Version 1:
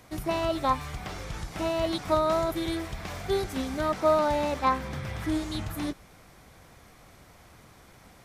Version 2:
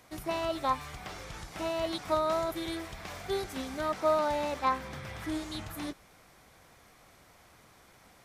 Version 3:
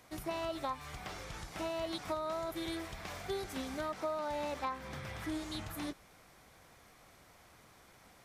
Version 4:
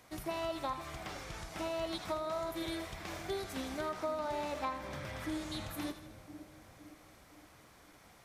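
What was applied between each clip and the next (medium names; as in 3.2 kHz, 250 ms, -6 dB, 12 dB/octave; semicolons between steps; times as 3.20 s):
bass shelf 290 Hz -7 dB; trim -3 dB
compression 5:1, threshold -32 dBFS, peak gain reduction 9.5 dB; trim -2 dB
two-band feedback delay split 660 Hz, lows 513 ms, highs 80 ms, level -10.5 dB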